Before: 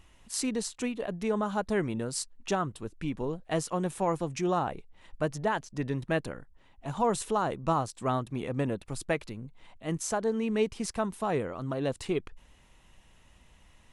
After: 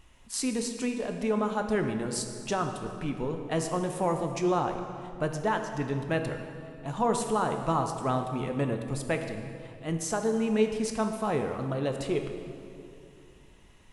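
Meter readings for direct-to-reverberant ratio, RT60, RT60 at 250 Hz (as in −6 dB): 4.5 dB, 2.5 s, 3.0 s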